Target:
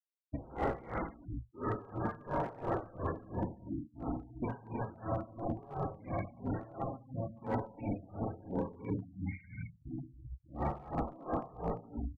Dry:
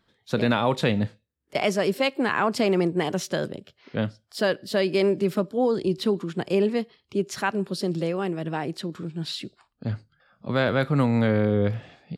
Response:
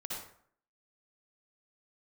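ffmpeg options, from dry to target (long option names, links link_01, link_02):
-filter_complex "[0:a]acrossover=split=3300[link_01][link_02];[link_01]adynamicequalizer=threshold=0.0126:dfrequency=450:dqfactor=2.3:tfrequency=450:tqfactor=2.3:attack=5:release=100:ratio=0.375:range=3.5:mode=boostabove:tftype=bell[link_03];[link_02]acompressor=threshold=-52dB:ratio=16[link_04];[link_03][link_04]amix=inputs=2:normalize=0,asoftclip=type=tanh:threshold=-22dB,equalizer=frequency=120:width=4.9:gain=5,aecho=1:1:120|204|262.8|304|332.8:0.631|0.398|0.251|0.158|0.1,asetrate=24750,aresample=44100,atempo=1.7818[link_05];[1:a]atrim=start_sample=2205,afade=type=out:start_time=0.41:duration=0.01,atrim=end_sample=18522,asetrate=66150,aresample=44100[link_06];[link_05][link_06]afir=irnorm=-1:irlink=0,afftfilt=real='re*gte(hypot(re,im),0.0178)':imag='im*gte(hypot(re,im),0.0178)':win_size=1024:overlap=0.75,acontrast=49,afftfilt=real='re*lt(hypot(re,im),0.398)':imag='im*lt(hypot(re,im),0.398)':win_size=1024:overlap=0.75,asoftclip=type=hard:threshold=-21.5dB,aeval=exprs='val(0)*pow(10,-21*(0.5-0.5*cos(2*PI*2.9*n/s))/20)':channel_layout=same,volume=-3dB"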